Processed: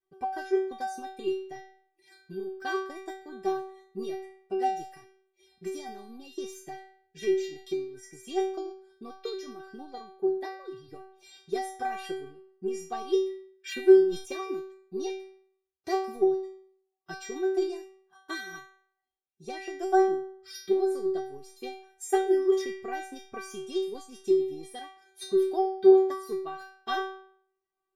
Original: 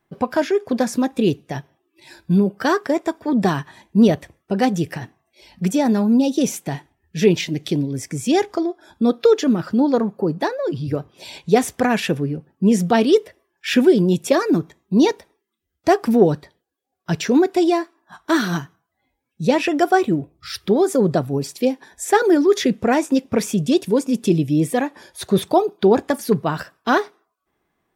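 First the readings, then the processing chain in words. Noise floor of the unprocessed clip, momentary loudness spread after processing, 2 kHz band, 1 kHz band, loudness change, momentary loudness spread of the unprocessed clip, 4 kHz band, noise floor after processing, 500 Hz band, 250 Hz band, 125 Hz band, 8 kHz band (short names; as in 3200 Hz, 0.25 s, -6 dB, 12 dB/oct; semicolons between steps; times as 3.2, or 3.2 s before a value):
-75 dBFS, 19 LU, -13.5 dB, -10.0 dB, -10.0 dB, 12 LU, -14.0 dB, -81 dBFS, -8.0 dB, -15.5 dB, under -30 dB, -14.5 dB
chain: transient shaper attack +8 dB, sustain -2 dB; metallic resonator 380 Hz, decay 0.6 s, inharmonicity 0.002; sustainer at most 120 dB/s; gain +1.5 dB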